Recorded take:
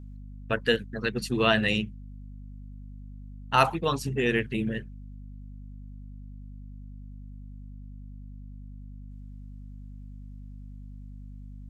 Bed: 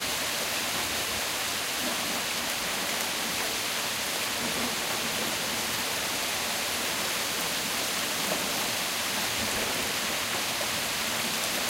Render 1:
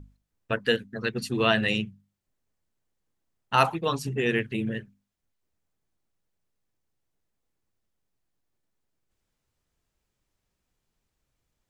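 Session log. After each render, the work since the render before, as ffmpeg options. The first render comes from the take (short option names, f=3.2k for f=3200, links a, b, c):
-af "bandreject=f=50:t=h:w=6,bandreject=f=100:t=h:w=6,bandreject=f=150:t=h:w=6,bandreject=f=200:t=h:w=6,bandreject=f=250:t=h:w=6"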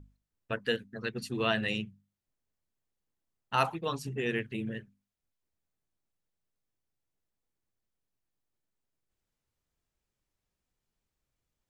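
-af "volume=-6.5dB"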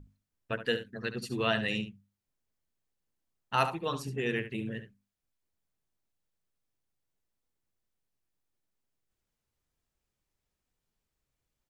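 -af "aecho=1:1:71:0.266"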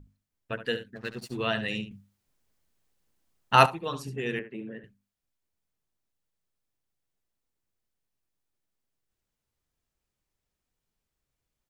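-filter_complex "[0:a]asplit=3[a][b][c];[a]afade=t=out:st=0.95:d=0.02[d];[b]aeval=exprs='sgn(val(0))*max(abs(val(0))-0.00376,0)':c=same,afade=t=in:st=0.95:d=0.02,afade=t=out:st=1.36:d=0.02[e];[c]afade=t=in:st=1.36:d=0.02[f];[d][e][f]amix=inputs=3:normalize=0,asettb=1/sr,asplit=3[g][h][i];[g]atrim=end=4.394[j];[h]atrim=start=4.39:end=4.84,asetpts=PTS-STARTPTS,afade=t=in:d=0.004:c=qsin,afade=t=out:st=0.446:d=0.004:c=qsin,acrossover=split=180 2000:gain=0.0708 1 0.141[k][l][m];[k][l][m]amix=inputs=3:normalize=0[n];[i]atrim=start=4.836[o];[j][n]acrossfade=d=0.004:c1=hsin:c2=qsin[p];[p][o]acrossfade=d=0.004:c1=qsin:c2=hsin,asplit=3[q][r][s];[q]atrim=end=1.912[t];[r]atrim=start=1.908:end=3.662,asetpts=PTS-STARTPTS,volume=9.5dB[u];[s]atrim=start=3.658[v];[t][u]acrossfade=d=0.004:c1=hsin:c2=hsin[w];[w][v]acrossfade=d=0.004:c1=hsin:c2=hsin"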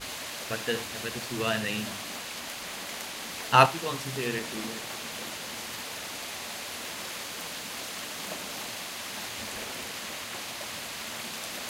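-filter_complex "[1:a]volume=-8dB[a];[0:a][a]amix=inputs=2:normalize=0"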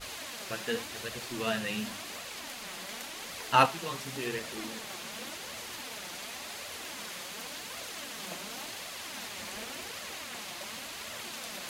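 -af "flanger=delay=1.4:depth=4.5:regen=37:speed=0.9:shape=triangular"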